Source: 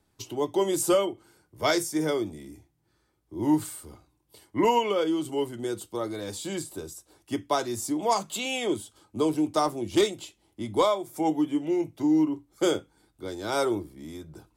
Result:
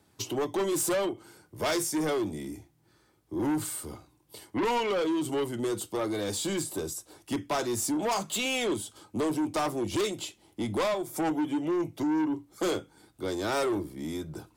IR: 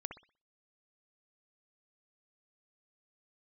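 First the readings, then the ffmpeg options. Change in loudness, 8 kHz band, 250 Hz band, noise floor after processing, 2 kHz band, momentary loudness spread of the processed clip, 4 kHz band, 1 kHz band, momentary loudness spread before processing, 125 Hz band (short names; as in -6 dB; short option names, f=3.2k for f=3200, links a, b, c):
-3.0 dB, +1.5 dB, -2.5 dB, -66 dBFS, +0.5 dB, 10 LU, -1.5 dB, -4.0 dB, 17 LU, 0.0 dB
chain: -filter_complex "[0:a]highpass=83,asplit=2[a][b];[b]acompressor=threshold=-32dB:ratio=6,volume=1dB[c];[a][c]amix=inputs=2:normalize=0,asoftclip=type=tanh:threshold=-24.5dB"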